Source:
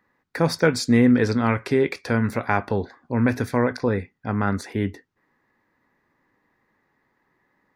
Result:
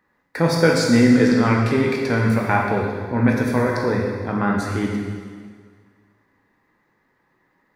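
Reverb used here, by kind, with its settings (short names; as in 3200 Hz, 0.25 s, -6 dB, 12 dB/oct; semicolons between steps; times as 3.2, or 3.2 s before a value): plate-style reverb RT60 1.8 s, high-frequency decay 0.95×, DRR -1 dB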